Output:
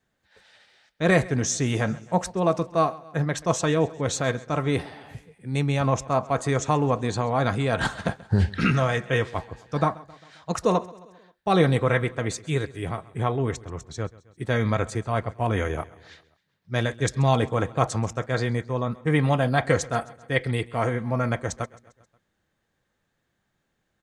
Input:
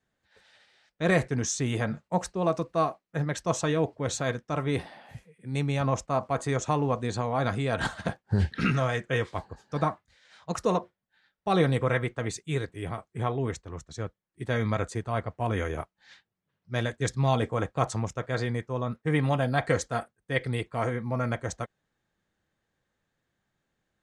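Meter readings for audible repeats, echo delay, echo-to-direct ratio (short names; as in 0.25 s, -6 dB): 3, 0.133 s, -19.5 dB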